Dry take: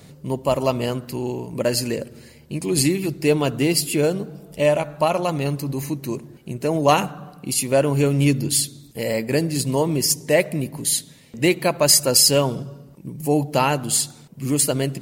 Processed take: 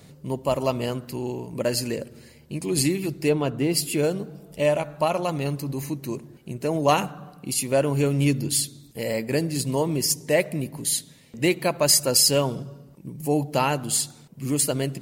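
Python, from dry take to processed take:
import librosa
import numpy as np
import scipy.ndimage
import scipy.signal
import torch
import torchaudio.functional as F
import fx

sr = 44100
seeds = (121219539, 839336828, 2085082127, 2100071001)

y = fx.high_shelf(x, sr, hz=fx.line((3.28, 4400.0), (3.72, 2600.0)), db=-11.0, at=(3.28, 3.72), fade=0.02)
y = F.gain(torch.from_numpy(y), -3.5).numpy()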